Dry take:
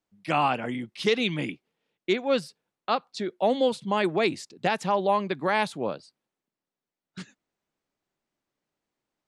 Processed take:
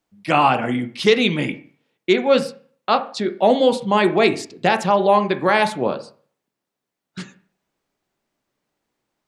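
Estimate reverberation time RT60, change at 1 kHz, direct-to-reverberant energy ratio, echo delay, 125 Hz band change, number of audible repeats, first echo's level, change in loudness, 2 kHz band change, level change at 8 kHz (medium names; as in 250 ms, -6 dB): 0.45 s, +8.5 dB, 7.5 dB, no echo, +8.0 dB, no echo, no echo, +8.5 dB, +8.0 dB, +7.5 dB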